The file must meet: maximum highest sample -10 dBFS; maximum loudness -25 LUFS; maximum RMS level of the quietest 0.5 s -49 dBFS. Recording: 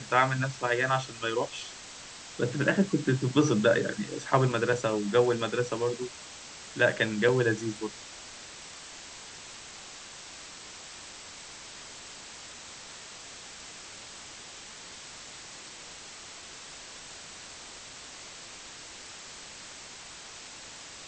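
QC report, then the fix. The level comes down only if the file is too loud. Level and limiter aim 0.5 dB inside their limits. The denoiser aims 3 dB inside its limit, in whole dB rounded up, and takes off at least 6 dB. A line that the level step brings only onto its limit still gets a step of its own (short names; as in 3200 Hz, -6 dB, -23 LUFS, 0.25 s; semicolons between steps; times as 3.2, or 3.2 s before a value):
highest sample -9.5 dBFS: fail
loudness -28.0 LUFS: OK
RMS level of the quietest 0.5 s -46 dBFS: fail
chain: denoiser 6 dB, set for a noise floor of -46 dBFS; limiter -10.5 dBFS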